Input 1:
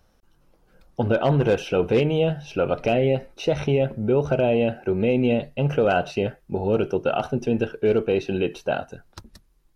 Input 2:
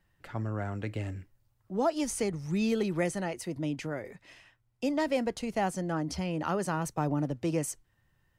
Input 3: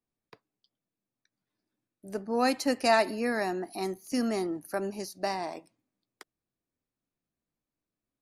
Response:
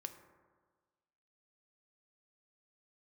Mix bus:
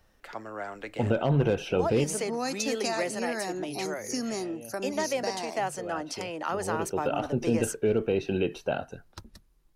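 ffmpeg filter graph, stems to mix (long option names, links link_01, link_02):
-filter_complex "[0:a]volume=-3dB[link_01];[1:a]highpass=460,volume=3dB[link_02];[2:a]equalizer=frequency=6400:width=1.8:gain=13.5,acompressor=threshold=-30dB:ratio=2.5,volume=0dB,asplit=2[link_03][link_04];[link_04]apad=whole_len=430321[link_05];[link_01][link_05]sidechaincompress=threshold=-53dB:ratio=10:attack=8.4:release=910[link_06];[link_06][link_02][link_03]amix=inputs=3:normalize=0,acrossover=split=310[link_07][link_08];[link_08]acompressor=threshold=-25dB:ratio=4[link_09];[link_07][link_09]amix=inputs=2:normalize=0"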